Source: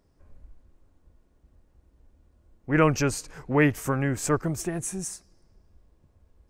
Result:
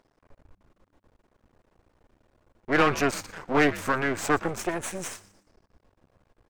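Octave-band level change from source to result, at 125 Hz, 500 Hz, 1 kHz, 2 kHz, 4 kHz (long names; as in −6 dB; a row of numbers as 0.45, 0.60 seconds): −9.0, 0.0, +3.5, +3.5, +4.0 decibels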